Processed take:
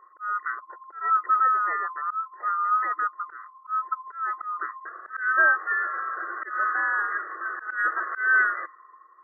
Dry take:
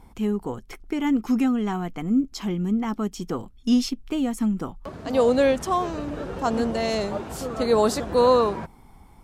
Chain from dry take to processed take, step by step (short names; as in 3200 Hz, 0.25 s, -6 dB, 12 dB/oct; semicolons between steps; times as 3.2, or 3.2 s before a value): band-swap scrambler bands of 1000 Hz; low-pass opened by the level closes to 860 Hz, open at -17 dBFS; FFT band-pass 320–2000 Hz; auto swell 0.221 s